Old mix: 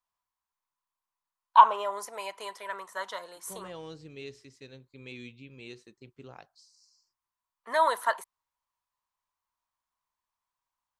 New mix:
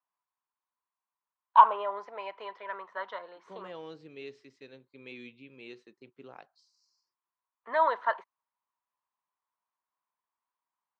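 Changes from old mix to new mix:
first voice: add high-frequency loss of the air 220 metres
master: add band-pass filter 230–3,300 Hz

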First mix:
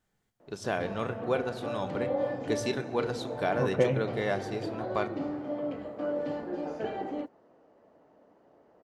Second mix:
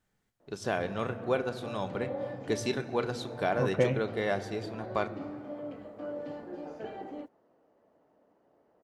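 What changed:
second voice: send off
background −6.5 dB

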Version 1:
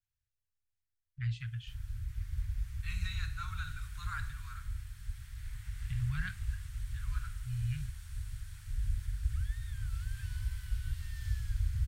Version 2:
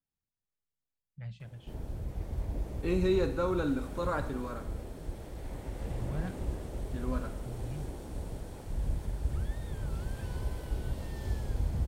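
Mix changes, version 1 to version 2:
first voice −10.5 dB
master: remove elliptic band-stop filter 110–1,500 Hz, stop band 70 dB

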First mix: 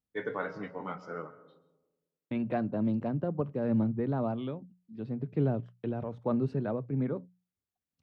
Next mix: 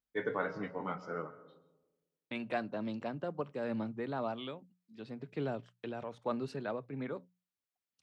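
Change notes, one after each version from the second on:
second voice: add spectral tilt +4.5 dB per octave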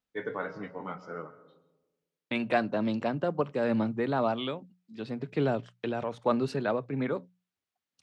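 second voice +9.0 dB

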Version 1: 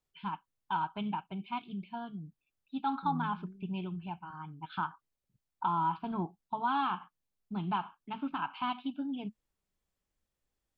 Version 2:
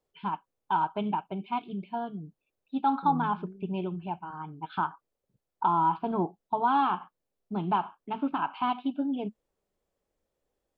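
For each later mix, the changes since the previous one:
master: add parametric band 500 Hz +14 dB 1.6 octaves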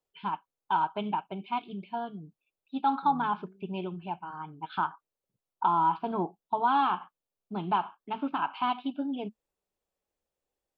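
second voice −6.5 dB
master: add spectral tilt +1.5 dB per octave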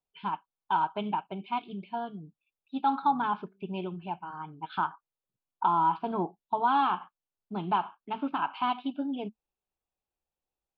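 second voice −9.0 dB

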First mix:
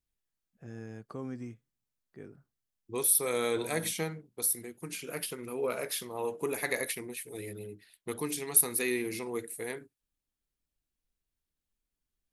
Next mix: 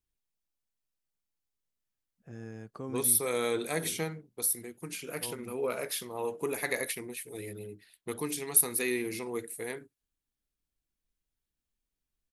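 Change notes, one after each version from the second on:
first voice: entry +1.65 s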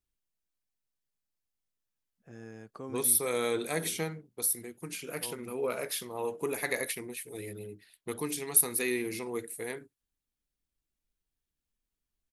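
first voice: add low-shelf EQ 180 Hz −8.5 dB

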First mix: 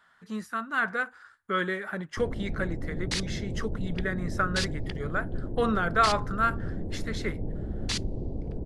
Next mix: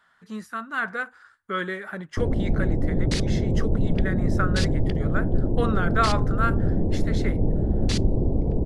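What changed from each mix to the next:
first sound +11.0 dB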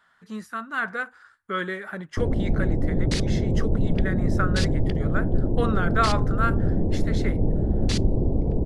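nothing changed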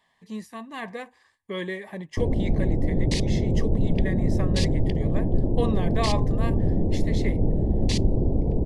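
master: add Butterworth band-reject 1,400 Hz, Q 1.9

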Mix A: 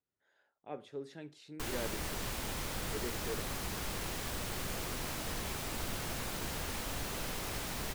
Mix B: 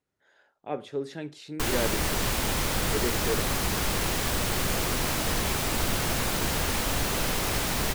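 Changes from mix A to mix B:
speech +11.0 dB
background +11.5 dB

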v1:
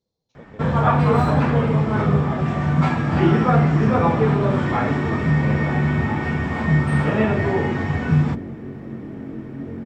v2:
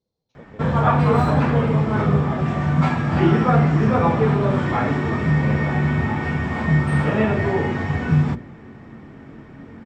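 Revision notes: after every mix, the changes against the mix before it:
speech: add high-frequency loss of the air 76 metres
second sound −10.5 dB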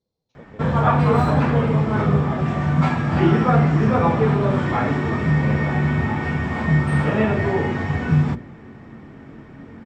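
nothing changed

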